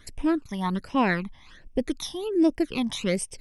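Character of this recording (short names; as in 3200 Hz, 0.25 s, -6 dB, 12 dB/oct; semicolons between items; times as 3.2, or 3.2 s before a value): phasing stages 12, 1.3 Hz, lowest notch 430–1400 Hz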